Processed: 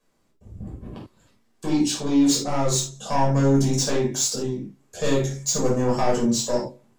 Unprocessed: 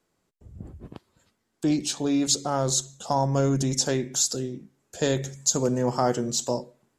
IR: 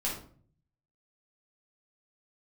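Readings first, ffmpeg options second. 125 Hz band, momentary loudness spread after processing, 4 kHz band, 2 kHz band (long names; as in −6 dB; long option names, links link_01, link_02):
+3.5 dB, 19 LU, +1.5 dB, +3.0 dB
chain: -filter_complex "[0:a]asoftclip=type=tanh:threshold=-20dB[link_01];[1:a]atrim=start_sample=2205,atrim=end_sample=4410[link_02];[link_01][link_02]afir=irnorm=-1:irlink=0"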